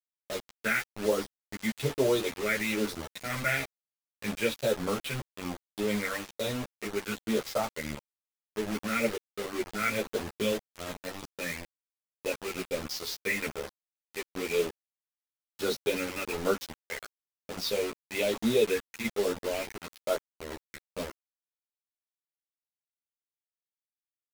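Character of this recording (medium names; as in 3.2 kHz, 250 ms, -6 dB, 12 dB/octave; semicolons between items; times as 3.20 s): phasing stages 4, 1.1 Hz, lowest notch 780–2300 Hz; a quantiser's noise floor 6-bit, dither none; a shimmering, thickened sound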